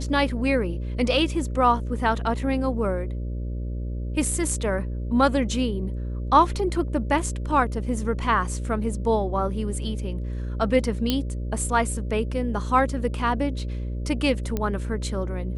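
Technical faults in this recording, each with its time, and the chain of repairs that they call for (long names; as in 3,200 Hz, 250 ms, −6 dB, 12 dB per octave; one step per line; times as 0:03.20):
mains buzz 60 Hz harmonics 10 −29 dBFS
0:11.10: click −8 dBFS
0:14.57: click −13 dBFS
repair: click removal
hum removal 60 Hz, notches 10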